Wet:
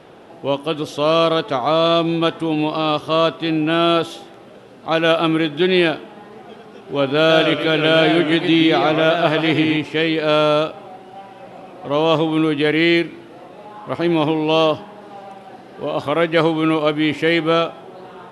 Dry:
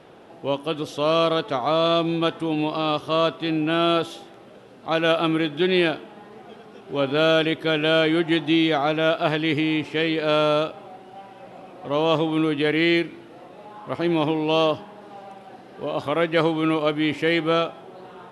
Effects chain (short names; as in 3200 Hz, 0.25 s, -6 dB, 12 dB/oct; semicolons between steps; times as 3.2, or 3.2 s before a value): 7.17–9.77 warbling echo 0.121 s, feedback 48%, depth 156 cents, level -7 dB; gain +4.5 dB